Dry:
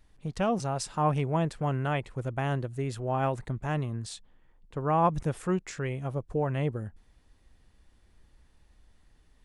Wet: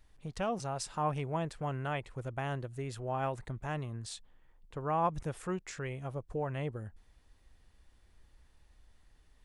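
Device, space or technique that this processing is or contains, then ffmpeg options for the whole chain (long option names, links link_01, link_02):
parallel compression: -filter_complex "[0:a]asplit=2[link_01][link_02];[link_02]acompressor=threshold=-38dB:ratio=6,volume=-3dB[link_03];[link_01][link_03]amix=inputs=2:normalize=0,equalizer=frequency=210:width_type=o:width=1.9:gain=-4.5,volume=-6dB"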